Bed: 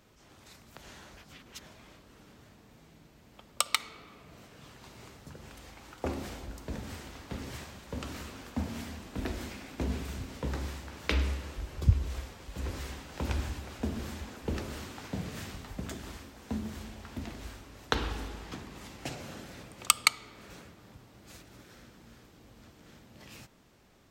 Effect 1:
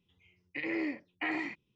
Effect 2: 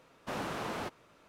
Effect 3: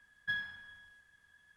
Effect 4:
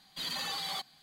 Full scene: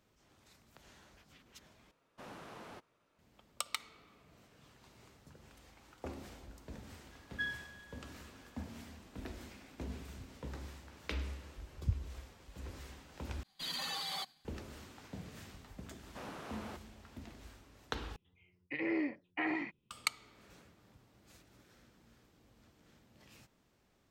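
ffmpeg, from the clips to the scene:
ffmpeg -i bed.wav -i cue0.wav -i cue1.wav -i cue2.wav -i cue3.wav -filter_complex "[2:a]asplit=2[link_01][link_02];[0:a]volume=-10.5dB[link_03];[4:a]agate=range=-33dB:threshold=-57dB:ratio=3:release=100:detection=peak[link_04];[1:a]aemphasis=mode=reproduction:type=75fm[link_05];[link_03]asplit=4[link_06][link_07][link_08][link_09];[link_06]atrim=end=1.914[link_10];[link_01]atrim=end=1.28,asetpts=PTS-STARTPTS,volume=-13.5dB[link_11];[link_07]atrim=start=3.186:end=13.434[link_12];[link_04]atrim=end=1.02,asetpts=PTS-STARTPTS,volume=-3.5dB[link_13];[link_08]atrim=start=14.446:end=18.164[link_14];[link_05]atrim=end=1.75,asetpts=PTS-STARTPTS,volume=-1dB[link_15];[link_09]atrim=start=19.906[link_16];[3:a]atrim=end=1.56,asetpts=PTS-STARTPTS,volume=-2.5dB,afade=type=in:duration=0.004:curve=hsin,afade=type=out:start_time=1.556:duration=0.004:curve=hsin,adelay=7110[link_17];[link_02]atrim=end=1.28,asetpts=PTS-STARTPTS,volume=-10dB,afade=type=in:duration=0.004:curve=hsin,afade=type=out:start_time=1.276:duration=0.004:curve=hsin,adelay=700308S[link_18];[link_10][link_11]acrossfade=duration=0.004:curve1=hsin:curve2=hsin[link_19];[link_19][link_12]acrossfade=duration=0.004:curve1=hsin:curve2=hsin[link_20];[link_20][link_13]acrossfade=duration=0.004:curve1=hsin:curve2=hsin[link_21];[link_21][link_14]acrossfade=duration=0.004:curve1=hsin:curve2=hsin[link_22];[link_22][link_15]acrossfade=duration=0.004:curve1=hsin:curve2=hsin[link_23];[link_23][link_16]acrossfade=duration=0.004:curve1=hsin:curve2=hsin[link_24];[link_24][link_17][link_18]amix=inputs=3:normalize=0" out.wav

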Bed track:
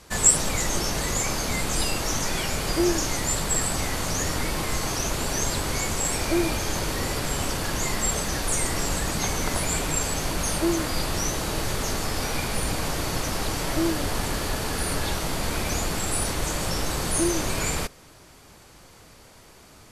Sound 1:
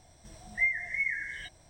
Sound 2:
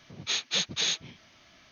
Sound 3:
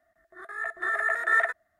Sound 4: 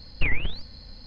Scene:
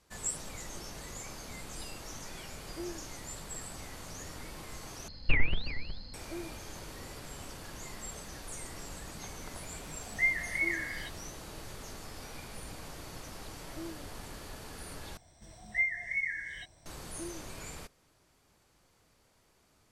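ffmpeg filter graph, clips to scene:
ffmpeg -i bed.wav -i cue0.wav -i cue1.wav -i cue2.wav -i cue3.wav -filter_complex "[1:a]asplit=2[link_01][link_02];[0:a]volume=-18dB[link_03];[4:a]asplit=2[link_04][link_05];[link_05]adelay=367.3,volume=-11dB,highshelf=frequency=4000:gain=-8.27[link_06];[link_04][link_06]amix=inputs=2:normalize=0[link_07];[link_03]asplit=3[link_08][link_09][link_10];[link_08]atrim=end=5.084[link_11];[link_07]atrim=end=1.06,asetpts=PTS-STARTPTS,volume=-2.5dB[link_12];[link_09]atrim=start=6.136:end=15.174[link_13];[link_02]atrim=end=1.69,asetpts=PTS-STARTPTS,volume=-2.5dB[link_14];[link_10]atrim=start=16.856[link_15];[link_01]atrim=end=1.69,asetpts=PTS-STARTPTS,volume=-1dB,afade=type=in:duration=0.004:curve=hsin,afade=type=out:start_time=1.686:duration=0.004:curve=hsin,adelay=9610[link_16];[link_11][link_12]acrossfade=duration=0.004:curve1=hsin:curve2=hsin[link_17];[link_17][link_13]acrossfade=duration=0.004:curve1=hsin:curve2=hsin[link_18];[link_18][link_14]acrossfade=duration=0.004:curve1=hsin:curve2=hsin[link_19];[link_19][link_15]acrossfade=duration=0.004:curve1=hsin:curve2=hsin[link_20];[link_20][link_16]amix=inputs=2:normalize=0" out.wav

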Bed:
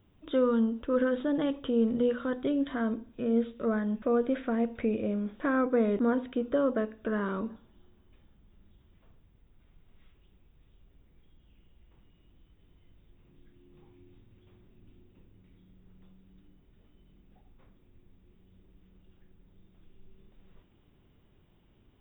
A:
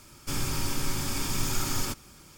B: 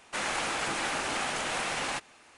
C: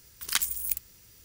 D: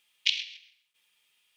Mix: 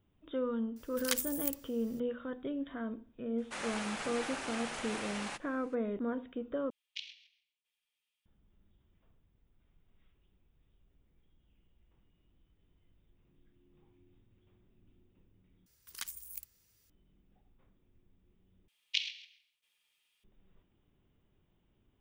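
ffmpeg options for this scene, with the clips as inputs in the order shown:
ffmpeg -i bed.wav -i cue0.wav -i cue1.wav -i cue2.wav -i cue3.wav -filter_complex "[3:a]asplit=2[link_01][link_02];[4:a]asplit=2[link_03][link_04];[0:a]volume=-9dB,asplit=4[link_05][link_06][link_07][link_08];[link_05]atrim=end=6.704[link_09];[link_03]atrim=end=1.56,asetpts=PTS-STARTPTS,volume=-17.5dB[link_10];[link_06]atrim=start=8.256:end=15.664[link_11];[link_02]atrim=end=1.24,asetpts=PTS-STARTPTS,volume=-15.5dB[link_12];[link_07]atrim=start=16.896:end=18.684[link_13];[link_04]atrim=end=1.56,asetpts=PTS-STARTPTS,volume=-7dB[link_14];[link_08]atrim=start=20.236[link_15];[link_01]atrim=end=1.24,asetpts=PTS-STARTPTS,volume=-6.5dB,afade=type=in:duration=0.004:curve=hsin,afade=type=out:start_time=1.236:duration=0.004:curve=hsin,adelay=760[link_16];[2:a]atrim=end=2.37,asetpts=PTS-STARTPTS,volume=-9dB,afade=type=in:duration=0.004:curve=hsin,afade=type=out:start_time=2.366:duration=0.004:curve=hsin,adelay=3380[link_17];[link_09][link_10]acrossfade=duration=0.004:curve1=hsin:curve2=hsin[link_18];[link_18][link_11]acrossfade=duration=0.004:curve1=hsin:curve2=hsin[link_19];[link_19][link_12]acrossfade=duration=0.004:curve1=hsin:curve2=hsin[link_20];[link_20][link_13]acrossfade=duration=0.004:curve1=hsin:curve2=hsin[link_21];[link_21][link_14]acrossfade=duration=0.004:curve1=hsin:curve2=hsin[link_22];[link_22][link_15]acrossfade=duration=0.004:curve1=hsin:curve2=hsin[link_23];[link_23][link_16][link_17]amix=inputs=3:normalize=0" out.wav

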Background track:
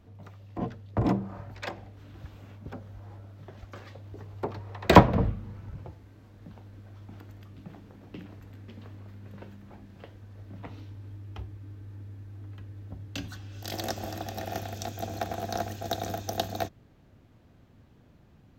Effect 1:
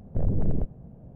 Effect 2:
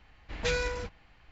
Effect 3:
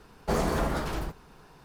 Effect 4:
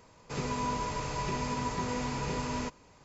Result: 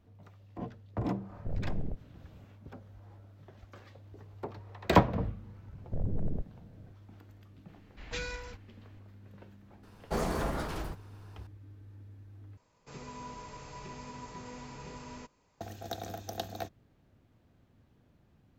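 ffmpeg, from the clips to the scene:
ffmpeg -i bed.wav -i cue0.wav -i cue1.wav -i cue2.wav -i cue3.wav -filter_complex "[1:a]asplit=2[link_01][link_02];[0:a]volume=-7.5dB[link_03];[2:a]equalizer=frequency=280:width=0.51:gain=-6.5[link_04];[link_03]asplit=2[link_05][link_06];[link_05]atrim=end=12.574[link_07];[4:a]atrim=end=3.04,asetpts=PTS-STARTPTS,volume=-12dB[link_08];[link_06]atrim=start=15.606[link_09];[link_01]atrim=end=1.15,asetpts=PTS-STARTPTS,volume=-10dB,afade=type=in:duration=0.004:curve=hsin,afade=type=out:start_time=1.146:duration=0.004:curve=hsin,adelay=1300[link_10];[link_02]atrim=end=1.15,asetpts=PTS-STARTPTS,volume=-8dB,afade=type=in:duration=0.004:curve=hsin,afade=type=out:start_time=1.146:duration=0.004:curve=hsin,adelay=254457S[link_11];[link_04]atrim=end=1.31,asetpts=PTS-STARTPTS,volume=-6.5dB,afade=type=in:duration=0.004:curve=hsin,afade=type=out:start_time=1.306:duration=0.004:curve=hsin,adelay=7680[link_12];[3:a]atrim=end=1.64,asetpts=PTS-STARTPTS,volume=-5dB,afade=type=in:duration=0.004:curve=hsin,afade=type=out:start_time=1.636:duration=0.004:curve=hsin,adelay=9830[link_13];[link_07][link_08]acrossfade=duration=0.004:curve1=hsin:curve2=hsin[link_14];[link_14][link_09]acrossfade=duration=0.004:curve1=hsin:curve2=hsin[link_15];[link_15][link_10][link_11][link_12][link_13]amix=inputs=5:normalize=0" out.wav

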